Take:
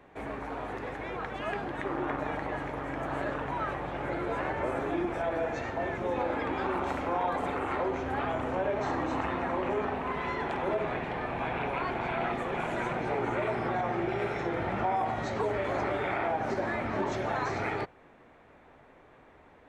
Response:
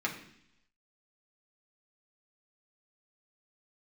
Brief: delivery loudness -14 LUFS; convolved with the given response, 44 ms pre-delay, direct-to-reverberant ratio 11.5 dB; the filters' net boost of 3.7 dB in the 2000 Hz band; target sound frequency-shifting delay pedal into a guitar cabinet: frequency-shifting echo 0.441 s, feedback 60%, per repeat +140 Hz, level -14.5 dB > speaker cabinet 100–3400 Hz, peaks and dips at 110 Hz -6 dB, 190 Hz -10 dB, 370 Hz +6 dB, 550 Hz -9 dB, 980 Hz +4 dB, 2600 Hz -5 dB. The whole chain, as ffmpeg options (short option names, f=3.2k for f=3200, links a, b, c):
-filter_complex "[0:a]equalizer=f=2k:t=o:g=5.5,asplit=2[a][b];[1:a]atrim=start_sample=2205,adelay=44[c];[b][c]afir=irnorm=-1:irlink=0,volume=-18dB[d];[a][d]amix=inputs=2:normalize=0,asplit=7[e][f][g][h][i][j][k];[f]adelay=441,afreqshift=140,volume=-14.5dB[l];[g]adelay=882,afreqshift=280,volume=-18.9dB[m];[h]adelay=1323,afreqshift=420,volume=-23.4dB[n];[i]adelay=1764,afreqshift=560,volume=-27.8dB[o];[j]adelay=2205,afreqshift=700,volume=-32.2dB[p];[k]adelay=2646,afreqshift=840,volume=-36.7dB[q];[e][l][m][n][o][p][q]amix=inputs=7:normalize=0,highpass=100,equalizer=f=110:t=q:w=4:g=-6,equalizer=f=190:t=q:w=4:g=-10,equalizer=f=370:t=q:w=4:g=6,equalizer=f=550:t=q:w=4:g=-9,equalizer=f=980:t=q:w=4:g=4,equalizer=f=2.6k:t=q:w=4:g=-5,lowpass=f=3.4k:w=0.5412,lowpass=f=3.4k:w=1.3066,volume=16dB"